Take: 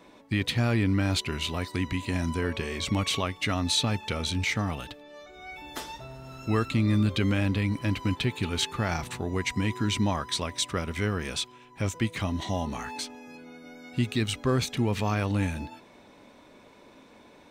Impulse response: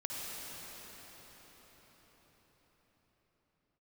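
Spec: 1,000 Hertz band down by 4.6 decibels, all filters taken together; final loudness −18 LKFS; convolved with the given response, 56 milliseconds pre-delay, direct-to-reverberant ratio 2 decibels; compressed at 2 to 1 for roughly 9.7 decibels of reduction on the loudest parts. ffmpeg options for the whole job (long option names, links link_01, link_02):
-filter_complex "[0:a]equalizer=frequency=1000:width_type=o:gain=-6,acompressor=threshold=-39dB:ratio=2,asplit=2[link_01][link_02];[1:a]atrim=start_sample=2205,adelay=56[link_03];[link_02][link_03]afir=irnorm=-1:irlink=0,volume=-5dB[link_04];[link_01][link_04]amix=inputs=2:normalize=0,volume=17.5dB"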